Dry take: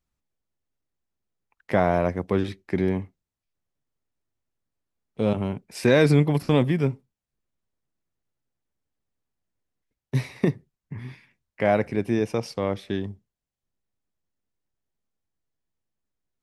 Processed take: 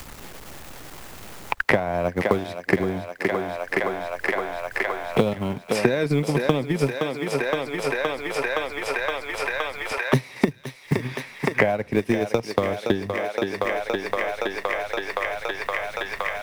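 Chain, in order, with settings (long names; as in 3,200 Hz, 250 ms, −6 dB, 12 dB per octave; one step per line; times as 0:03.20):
mu-law and A-law mismatch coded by mu
in parallel at +0.5 dB: downward compressor, threshold −30 dBFS, peak gain reduction 16 dB
on the sum: transient designer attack +12 dB, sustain −6 dB
low-shelf EQ 310 Hz −6 dB
on a send: feedback echo with a high-pass in the loop 518 ms, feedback 79%, high-pass 430 Hz, level −10 dB
on the sum: multiband upward and downward compressor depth 100%
level −2 dB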